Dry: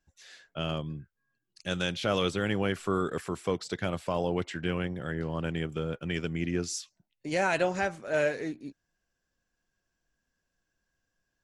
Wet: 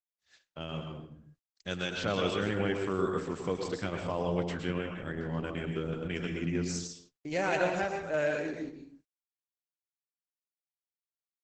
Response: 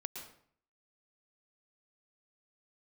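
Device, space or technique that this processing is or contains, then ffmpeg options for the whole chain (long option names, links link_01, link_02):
speakerphone in a meeting room: -filter_complex "[1:a]atrim=start_sample=2205[link_01];[0:a][link_01]afir=irnorm=-1:irlink=0,asplit=2[link_02][link_03];[link_03]adelay=80,highpass=300,lowpass=3400,asoftclip=type=hard:threshold=-25dB,volume=-29dB[link_04];[link_02][link_04]amix=inputs=2:normalize=0,dynaudnorm=framelen=140:gausssize=17:maxgain=4dB,agate=range=-39dB:threshold=-53dB:ratio=16:detection=peak,volume=-3.5dB" -ar 48000 -c:a libopus -b:a 12k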